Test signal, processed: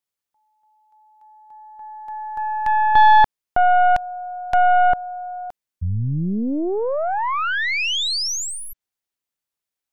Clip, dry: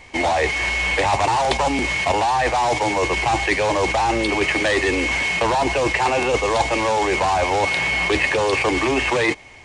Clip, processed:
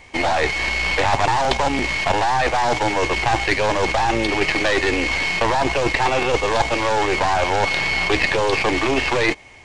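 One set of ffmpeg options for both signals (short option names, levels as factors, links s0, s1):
-filter_complex "[0:a]aeval=exprs='0.562*(cos(1*acos(clip(val(0)/0.562,-1,1)))-cos(1*PI/2))+0.158*(cos(2*acos(clip(val(0)/0.562,-1,1)))-cos(2*PI/2))+0.0501*(cos(6*acos(clip(val(0)/0.562,-1,1)))-cos(6*PI/2))+0.01*(cos(7*acos(clip(val(0)/0.562,-1,1)))-cos(7*PI/2))+0.00891*(cos(8*acos(clip(val(0)/0.562,-1,1)))-cos(8*PI/2))':c=same,acrossover=split=7300[s0][s1];[s1]acompressor=threshold=0.00447:ratio=4:attack=1:release=60[s2];[s0][s2]amix=inputs=2:normalize=0"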